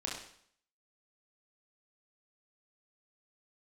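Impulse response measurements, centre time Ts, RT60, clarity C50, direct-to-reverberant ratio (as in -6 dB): 45 ms, 0.60 s, 3.0 dB, -3.5 dB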